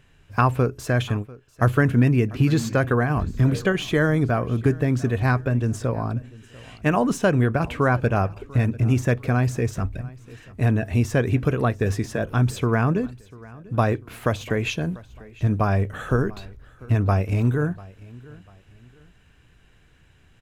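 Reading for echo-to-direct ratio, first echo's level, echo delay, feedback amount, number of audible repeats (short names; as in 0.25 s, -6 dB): -21.0 dB, -21.5 dB, 0.694 s, 34%, 2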